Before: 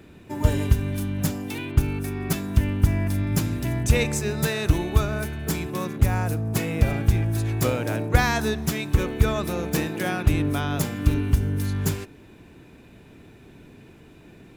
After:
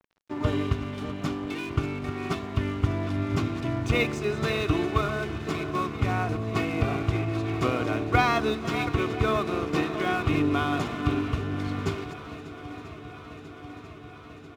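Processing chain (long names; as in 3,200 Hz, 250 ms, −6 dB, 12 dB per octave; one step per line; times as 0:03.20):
delay that plays each chunk backwards 387 ms, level −11 dB
Chebyshev band-pass filter 140–3,100 Hz, order 2
parametric band 1,200 Hz +11 dB 0.23 octaves
notch filter 1,700 Hz, Q 7.4
comb filter 2.8 ms, depth 54%
dead-zone distortion −41 dBFS
on a send: feedback echo with a long and a short gap by turns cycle 991 ms, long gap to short 1.5 to 1, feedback 73%, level −17 dB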